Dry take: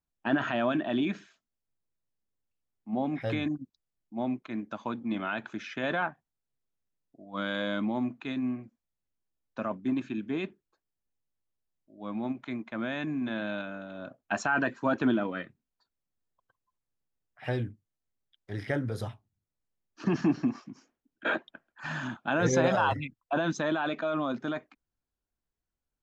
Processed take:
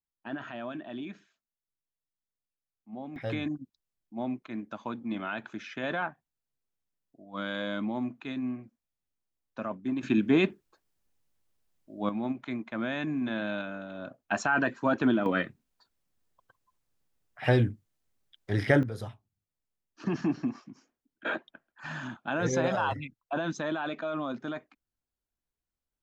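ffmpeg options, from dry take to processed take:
-af "asetnsamples=n=441:p=0,asendcmd='3.16 volume volume -2dB;10.03 volume volume 9.5dB;12.09 volume volume 1dB;15.26 volume volume 8dB;18.83 volume volume -3dB',volume=-10.5dB"

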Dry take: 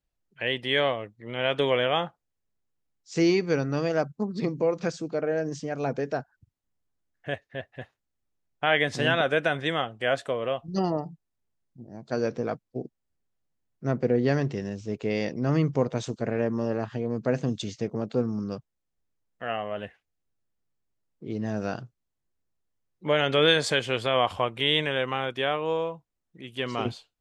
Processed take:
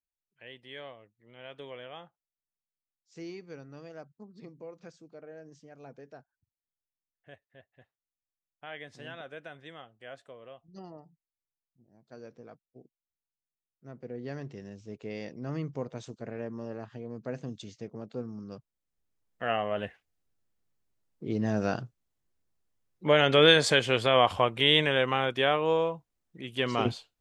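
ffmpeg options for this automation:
-af "volume=1.5dB,afade=t=in:st=13.92:d=0.84:silence=0.354813,afade=t=in:st=18.47:d=0.98:silence=0.237137"

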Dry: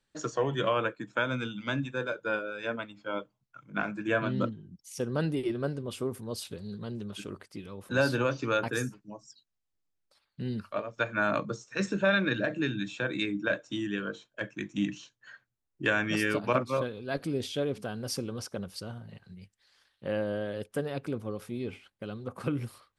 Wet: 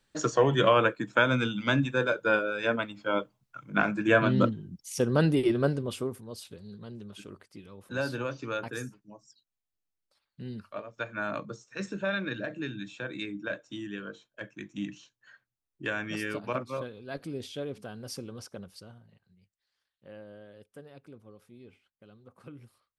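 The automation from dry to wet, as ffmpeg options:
-af "volume=6dB,afade=t=out:st=5.67:d=0.56:silence=0.266073,afade=t=out:st=18.52:d=0.69:silence=0.298538"

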